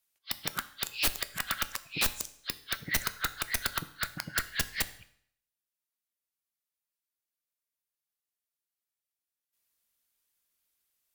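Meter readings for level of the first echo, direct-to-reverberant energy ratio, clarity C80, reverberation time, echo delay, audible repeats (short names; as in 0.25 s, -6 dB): none, 11.5 dB, 19.0 dB, 0.65 s, none, none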